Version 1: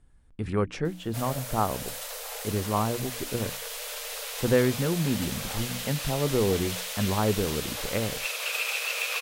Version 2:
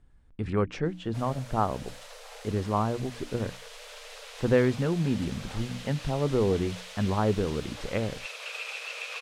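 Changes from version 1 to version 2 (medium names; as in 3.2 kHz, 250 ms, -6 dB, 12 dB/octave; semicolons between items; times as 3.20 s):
background -6.0 dB; master: add distance through air 70 m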